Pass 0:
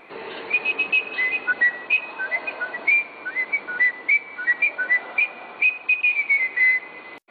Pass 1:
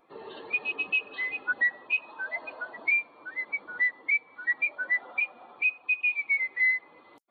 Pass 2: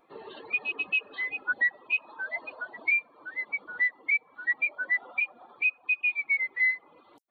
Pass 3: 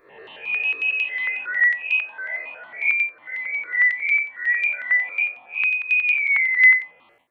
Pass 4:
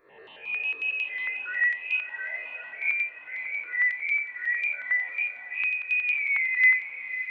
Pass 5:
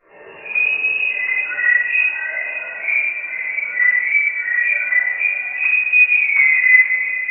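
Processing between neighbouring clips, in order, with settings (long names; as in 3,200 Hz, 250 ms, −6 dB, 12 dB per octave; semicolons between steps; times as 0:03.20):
spectral dynamics exaggerated over time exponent 1.5; level −5.5 dB
reverb reduction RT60 0.76 s
spectrum smeared in time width 147 ms; flat-topped bell 2,300 Hz +10 dB 1.1 octaves; step-sequenced phaser 11 Hz 810–1,700 Hz; level +6.5 dB
feedback delay with all-pass diffusion 596 ms, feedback 49%, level −12 dB; level −6.5 dB
linear-phase brick-wall low-pass 2,900 Hz; convolution reverb RT60 1.0 s, pre-delay 5 ms, DRR −11.5 dB; level −3 dB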